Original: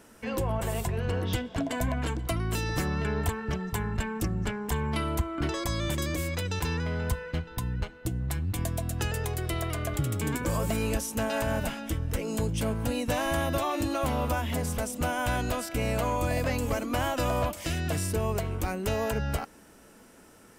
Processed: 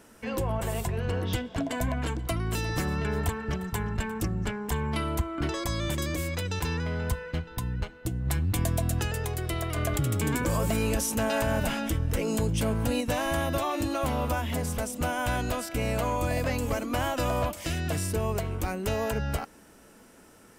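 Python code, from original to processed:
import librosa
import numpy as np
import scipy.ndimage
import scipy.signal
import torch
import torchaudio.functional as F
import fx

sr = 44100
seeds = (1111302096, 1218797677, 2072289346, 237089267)

y = fx.echo_single(x, sr, ms=353, db=-17.5, at=(2.11, 4.32))
y = fx.env_flatten(y, sr, amount_pct=50, at=(8.25, 8.99), fade=0.02)
y = fx.env_flatten(y, sr, amount_pct=50, at=(9.76, 13.01))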